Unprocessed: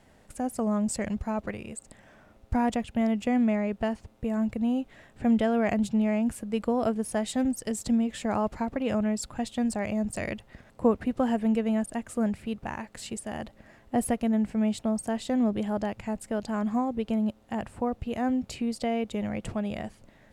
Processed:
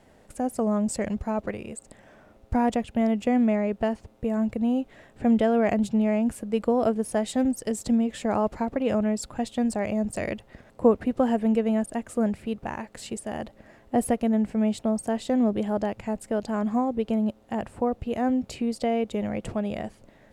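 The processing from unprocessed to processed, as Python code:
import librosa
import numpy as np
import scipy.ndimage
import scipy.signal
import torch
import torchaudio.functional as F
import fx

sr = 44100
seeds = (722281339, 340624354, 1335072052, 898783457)

y = fx.peak_eq(x, sr, hz=460.0, db=5.0, octaves=1.7)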